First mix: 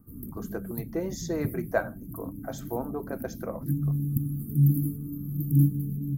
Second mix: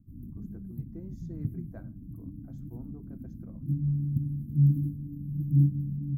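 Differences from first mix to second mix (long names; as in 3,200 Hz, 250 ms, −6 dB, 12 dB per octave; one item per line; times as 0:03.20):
speech −4.5 dB
master: add drawn EQ curve 130 Hz 0 dB, 310 Hz −7 dB, 480 Hz −21 dB, 2,900 Hz −25 dB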